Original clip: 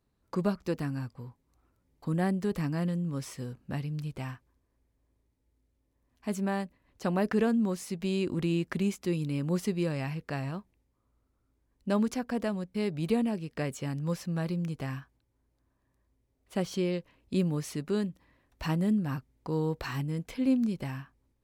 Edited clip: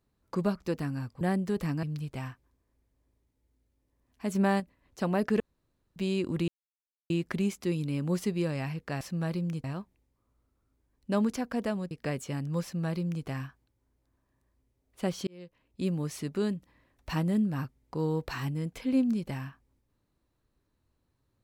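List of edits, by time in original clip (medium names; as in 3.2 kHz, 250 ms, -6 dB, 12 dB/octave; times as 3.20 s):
1.21–2.16 s: delete
2.78–3.86 s: delete
6.38–6.63 s: gain +5 dB
7.43–7.99 s: room tone
8.51 s: insert silence 0.62 s
12.69–13.44 s: delete
14.16–14.79 s: copy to 10.42 s
16.80–17.95 s: fade in equal-power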